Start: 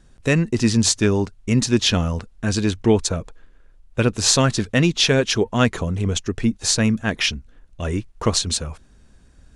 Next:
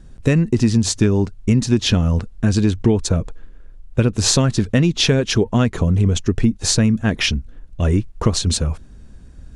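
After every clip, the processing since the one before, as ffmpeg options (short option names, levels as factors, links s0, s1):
-af "lowshelf=f=420:g=9.5,acompressor=threshold=0.224:ratio=6,volume=1.19"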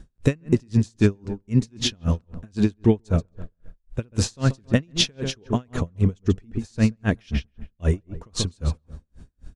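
-filter_complex "[0:a]asplit=2[s0][s1];[s1]adelay=135,lowpass=f=1800:p=1,volume=0.282,asplit=2[s2][s3];[s3]adelay=135,lowpass=f=1800:p=1,volume=0.42,asplit=2[s4][s5];[s5]adelay=135,lowpass=f=1800:p=1,volume=0.42,asplit=2[s6][s7];[s7]adelay=135,lowpass=f=1800:p=1,volume=0.42[s8];[s2][s4][s6][s8]amix=inputs=4:normalize=0[s9];[s0][s9]amix=inputs=2:normalize=0,aeval=exprs='val(0)*pow(10,-39*(0.5-0.5*cos(2*PI*3.8*n/s))/20)':c=same"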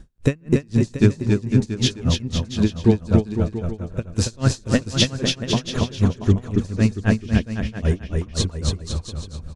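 -af "aecho=1:1:280|504|683.2|826.6|941.2:0.631|0.398|0.251|0.158|0.1,volume=1.12"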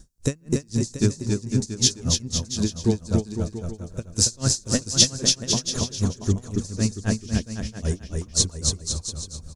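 -af "highshelf=f=4000:t=q:w=1.5:g=13,volume=0.531"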